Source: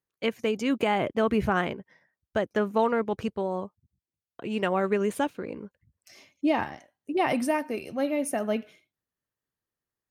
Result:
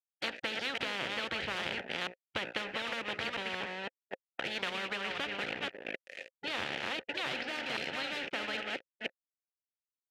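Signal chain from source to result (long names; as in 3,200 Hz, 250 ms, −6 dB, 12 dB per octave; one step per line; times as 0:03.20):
delay that plays each chunk backwards 259 ms, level −9 dB
de-essing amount 100%
Butterworth low-pass 4,900 Hz 48 dB per octave
parametric band 1,800 Hz +8.5 dB 2.7 octaves
mains-hum notches 60/120/180/240/300/360/420/480/540/600 Hz
downward compressor, threshold −23 dBFS, peak gain reduction 9 dB
dead-zone distortion −43.5 dBFS
formant filter e
every bin compressed towards the loudest bin 10 to 1
level +4.5 dB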